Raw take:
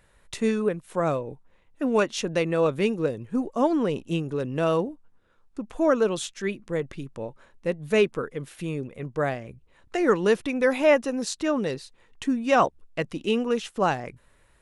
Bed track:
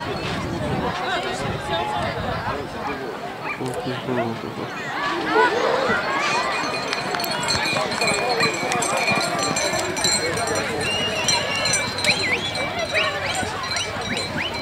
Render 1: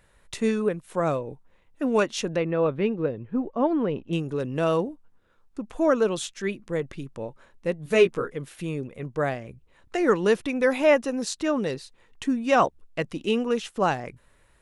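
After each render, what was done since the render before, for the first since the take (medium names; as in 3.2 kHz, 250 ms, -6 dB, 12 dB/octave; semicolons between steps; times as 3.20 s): 2.36–4.13 s: distance through air 340 m; 7.84–8.33 s: doubling 17 ms -4 dB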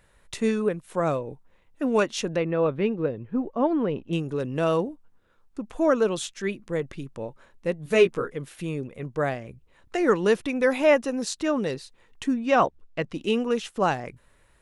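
12.34–13.14 s: distance through air 77 m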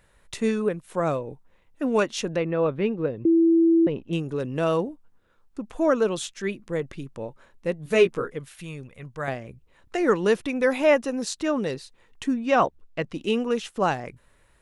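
3.25–3.87 s: bleep 331 Hz -14.5 dBFS; 8.39–9.28 s: peaking EQ 350 Hz -11 dB 2.1 oct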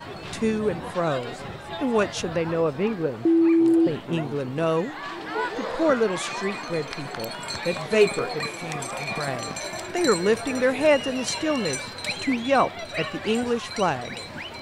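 add bed track -10.5 dB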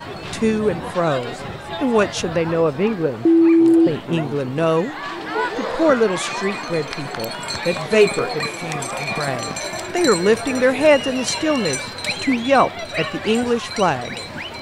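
trim +5.5 dB; peak limiter -3 dBFS, peak gain reduction 2 dB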